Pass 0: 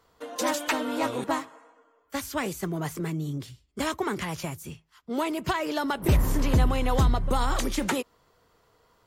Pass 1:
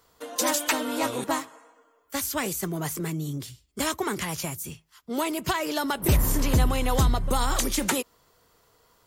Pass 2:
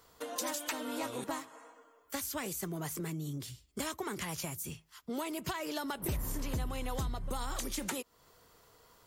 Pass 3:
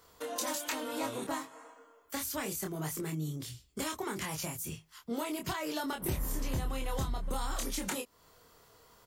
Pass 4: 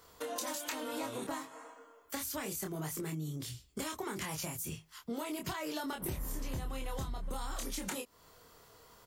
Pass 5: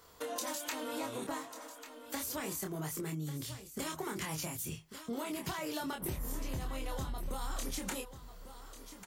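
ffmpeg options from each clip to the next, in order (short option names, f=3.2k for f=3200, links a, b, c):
-af "highshelf=f=5.2k:g=11.5"
-af "acompressor=threshold=-38dB:ratio=3"
-filter_complex "[0:a]asplit=2[a][b];[b]adelay=26,volume=-4dB[c];[a][c]amix=inputs=2:normalize=0"
-af "acompressor=threshold=-38dB:ratio=3,volume=1.5dB"
-af "aecho=1:1:1144:0.237"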